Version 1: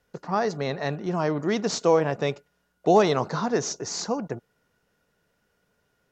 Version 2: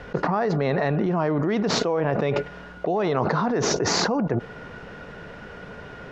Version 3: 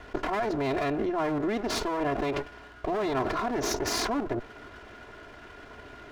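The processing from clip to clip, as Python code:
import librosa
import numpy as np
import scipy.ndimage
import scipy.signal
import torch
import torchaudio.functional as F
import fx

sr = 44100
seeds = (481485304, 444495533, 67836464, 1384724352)

y1 = scipy.signal.sosfilt(scipy.signal.butter(2, 2600.0, 'lowpass', fs=sr, output='sos'), x)
y1 = fx.env_flatten(y1, sr, amount_pct=100)
y1 = F.gain(torch.from_numpy(y1), -8.0).numpy()
y2 = fx.lower_of_two(y1, sr, delay_ms=2.9)
y2 = F.gain(torch.from_numpy(y2), -5.0).numpy()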